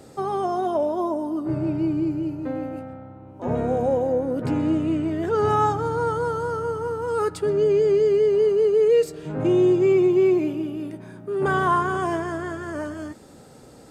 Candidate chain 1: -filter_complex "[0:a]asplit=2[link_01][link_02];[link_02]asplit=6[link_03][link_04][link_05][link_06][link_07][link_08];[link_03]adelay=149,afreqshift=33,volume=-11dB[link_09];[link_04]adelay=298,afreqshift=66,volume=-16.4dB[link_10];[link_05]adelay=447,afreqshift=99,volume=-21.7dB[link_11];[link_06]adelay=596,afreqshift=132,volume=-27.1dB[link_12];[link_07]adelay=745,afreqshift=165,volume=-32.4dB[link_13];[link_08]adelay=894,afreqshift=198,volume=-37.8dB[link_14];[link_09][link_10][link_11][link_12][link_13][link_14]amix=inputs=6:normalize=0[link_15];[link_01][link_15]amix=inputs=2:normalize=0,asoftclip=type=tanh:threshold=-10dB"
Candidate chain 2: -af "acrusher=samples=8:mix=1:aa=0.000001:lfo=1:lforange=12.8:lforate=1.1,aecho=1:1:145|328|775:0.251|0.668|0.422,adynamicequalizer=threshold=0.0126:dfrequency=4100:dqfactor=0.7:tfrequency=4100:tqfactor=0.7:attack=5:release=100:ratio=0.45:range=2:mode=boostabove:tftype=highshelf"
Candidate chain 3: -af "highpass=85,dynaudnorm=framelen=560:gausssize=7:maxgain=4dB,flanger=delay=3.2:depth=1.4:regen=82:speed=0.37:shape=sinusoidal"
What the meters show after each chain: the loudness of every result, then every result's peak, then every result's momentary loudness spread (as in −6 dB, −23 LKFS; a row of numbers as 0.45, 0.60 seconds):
−22.5, −20.0, −23.5 LKFS; −11.5, −5.5, −8.0 dBFS; 12, 11, 14 LU